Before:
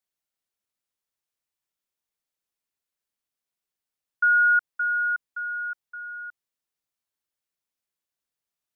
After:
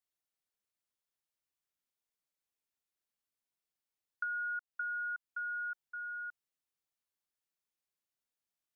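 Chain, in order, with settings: compression 10:1, threshold -31 dBFS, peak gain reduction 13.5 dB; trim -5 dB

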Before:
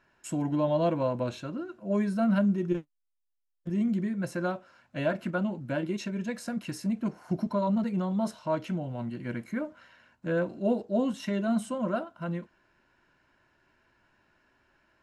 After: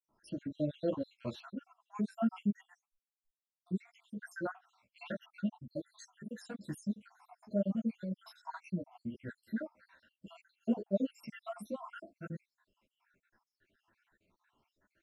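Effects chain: random holes in the spectrogram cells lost 75%; wow and flutter 22 cents; three-phase chorus; trim -1.5 dB

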